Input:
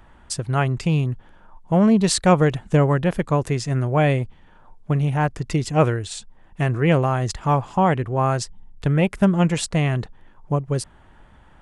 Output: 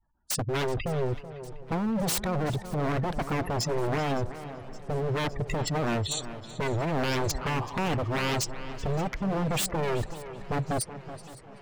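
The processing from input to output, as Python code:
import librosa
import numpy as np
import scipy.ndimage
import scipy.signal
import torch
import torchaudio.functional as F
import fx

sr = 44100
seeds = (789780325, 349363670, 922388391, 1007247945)

y = fx.noise_reduce_blind(x, sr, reduce_db=27)
y = fx.spec_gate(y, sr, threshold_db=-20, keep='strong')
y = fx.dynamic_eq(y, sr, hz=7500.0, q=0.99, threshold_db=-47.0, ratio=4.0, max_db=4)
y = fx.over_compress(y, sr, threshold_db=-21.0, ratio=-1.0)
y = 10.0 ** (-23.0 / 20.0) * (np.abs((y / 10.0 ** (-23.0 / 20.0) + 3.0) % 4.0 - 2.0) - 1.0)
y = fx.echo_tape(y, sr, ms=379, feedback_pct=35, wet_db=-11.0, lp_hz=3300.0, drive_db=21.0, wow_cents=15)
y = fx.echo_warbled(y, sr, ms=565, feedback_pct=79, rate_hz=2.8, cents=114, wet_db=-21.0)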